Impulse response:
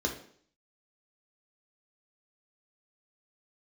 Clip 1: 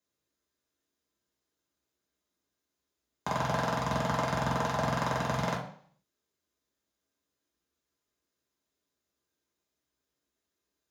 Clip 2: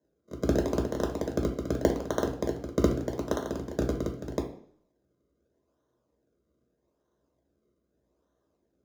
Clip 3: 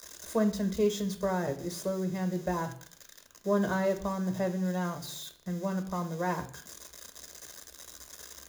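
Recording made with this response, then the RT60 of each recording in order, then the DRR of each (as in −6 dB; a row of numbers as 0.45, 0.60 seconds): 2; 0.55, 0.55, 0.55 seconds; −5.0, 1.0, 6.0 decibels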